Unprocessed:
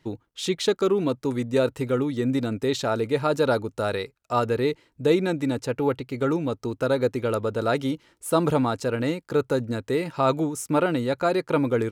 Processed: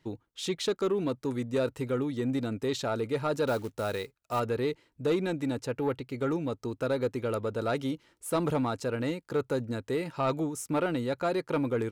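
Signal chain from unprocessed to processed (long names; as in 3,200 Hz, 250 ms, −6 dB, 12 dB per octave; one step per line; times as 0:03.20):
0:03.47–0:04.40: floating-point word with a short mantissa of 2 bits
soft clipping −14.5 dBFS, distortion −19 dB
level −5 dB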